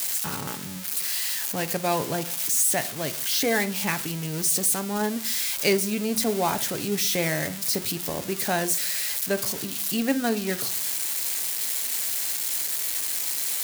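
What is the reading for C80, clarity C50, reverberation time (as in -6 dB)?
23.0 dB, 17.5 dB, not exponential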